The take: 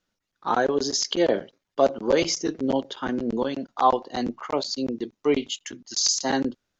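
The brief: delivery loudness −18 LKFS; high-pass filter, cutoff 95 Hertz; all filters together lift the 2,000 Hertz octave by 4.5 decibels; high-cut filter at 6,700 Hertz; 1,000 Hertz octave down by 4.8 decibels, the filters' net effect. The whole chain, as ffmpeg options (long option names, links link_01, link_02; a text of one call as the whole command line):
ffmpeg -i in.wav -af "highpass=95,lowpass=6700,equalizer=frequency=1000:width_type=o:gain=-8.5,equalizer=frequency=2000:width_type=o:gain=8.5,volume=8dB" out.wav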